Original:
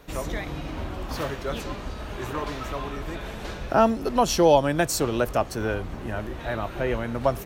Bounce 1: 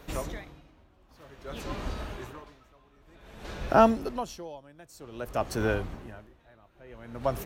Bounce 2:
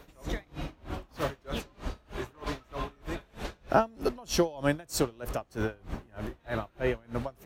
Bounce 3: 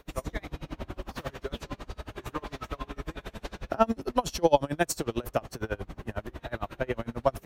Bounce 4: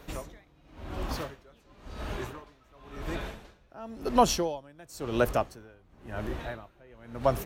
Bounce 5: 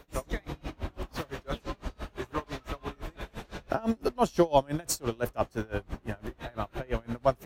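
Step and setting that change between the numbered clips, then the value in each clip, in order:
tremolo with a sine in dB, speed: 0.53, 3.2, 11, 0.95, 5.9 Hertz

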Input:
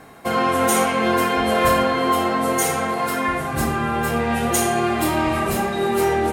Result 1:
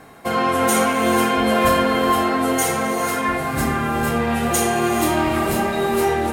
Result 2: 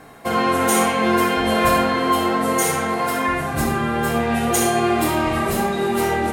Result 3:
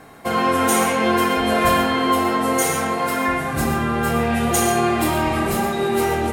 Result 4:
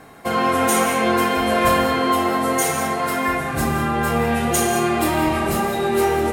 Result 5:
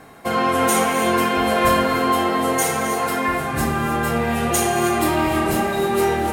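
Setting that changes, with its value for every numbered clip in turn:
reverb whose tail is shaped and stops, gate: 510, 90, 150, 220, 340 milliseconds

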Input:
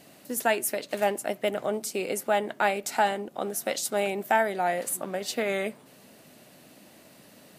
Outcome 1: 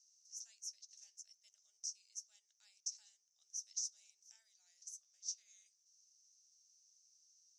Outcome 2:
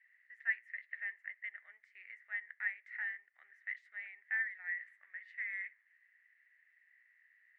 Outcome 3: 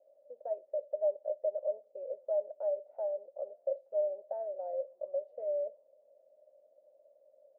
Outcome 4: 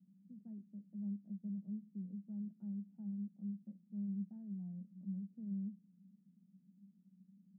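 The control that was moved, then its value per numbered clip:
flat-topped band-pass, frequency: 5,900, 1,900, 570, 190 Hertz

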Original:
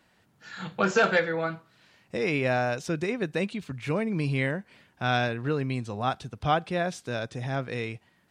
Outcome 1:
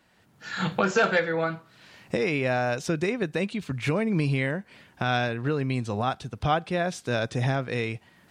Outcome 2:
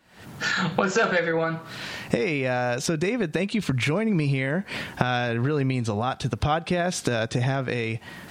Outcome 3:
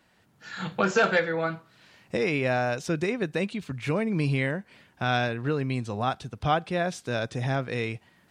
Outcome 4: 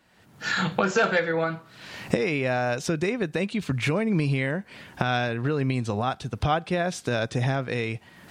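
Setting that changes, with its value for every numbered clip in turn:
camcorder AGC, rising by: 15, 91, 5.7, 37 dB per second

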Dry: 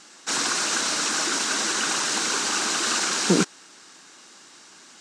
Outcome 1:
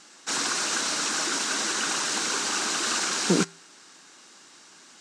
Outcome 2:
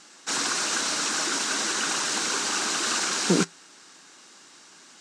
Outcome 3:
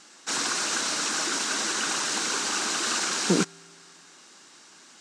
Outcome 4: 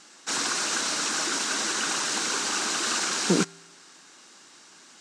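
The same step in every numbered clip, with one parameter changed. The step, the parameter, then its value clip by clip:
tuned comb filter, decay: 0.45, 0.19, 2.2, 1 seconds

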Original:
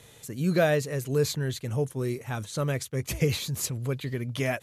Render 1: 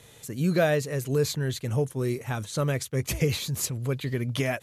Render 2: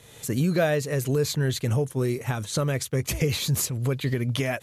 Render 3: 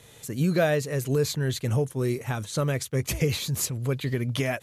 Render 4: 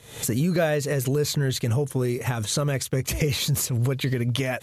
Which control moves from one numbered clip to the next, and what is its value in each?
camcorder AGC, rising by: 5.4, 33, 13, 86 dB per second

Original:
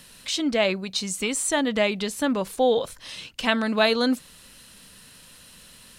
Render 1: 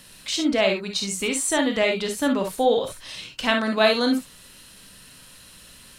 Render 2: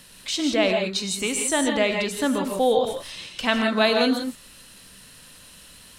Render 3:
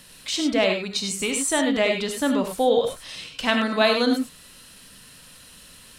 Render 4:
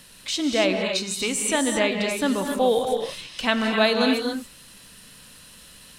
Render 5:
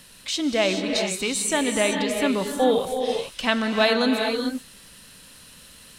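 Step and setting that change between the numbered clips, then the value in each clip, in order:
reverb whose tail is shaped and stops, gate: 80, 190, 120, 300, 460 milliseconds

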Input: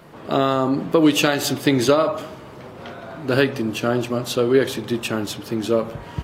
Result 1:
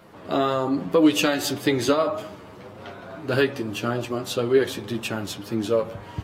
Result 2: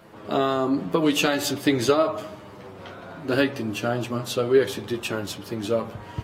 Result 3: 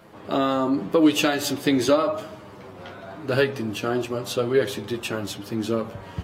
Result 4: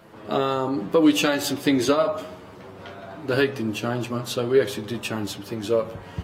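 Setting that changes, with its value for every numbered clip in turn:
flanger, speed: 1.8, 0.48, 0.88, 0.24 Hertz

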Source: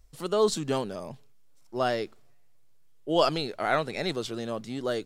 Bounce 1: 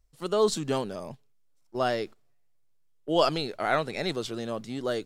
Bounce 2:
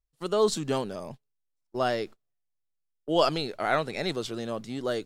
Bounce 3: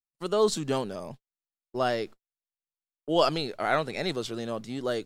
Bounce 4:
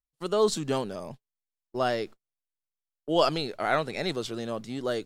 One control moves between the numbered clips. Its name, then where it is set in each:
noise gate, range: −10, −26, −55, −38 decibels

